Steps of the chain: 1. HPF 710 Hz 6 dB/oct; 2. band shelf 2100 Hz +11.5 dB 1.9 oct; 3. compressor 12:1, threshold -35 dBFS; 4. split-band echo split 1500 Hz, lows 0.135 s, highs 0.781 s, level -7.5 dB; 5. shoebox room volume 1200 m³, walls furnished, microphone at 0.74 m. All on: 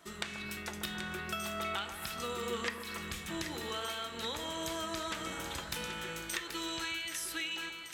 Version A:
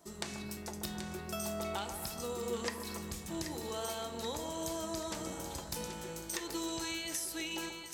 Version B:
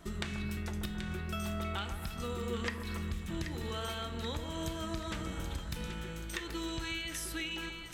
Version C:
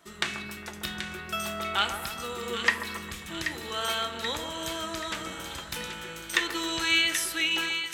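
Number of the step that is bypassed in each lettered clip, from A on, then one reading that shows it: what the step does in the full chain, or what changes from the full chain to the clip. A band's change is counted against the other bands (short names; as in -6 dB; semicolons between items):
2, 2 kHz band -8.5 dB; 1, 125 Hz band +13.5 dB; 3, mean gain reduction 4.5 dB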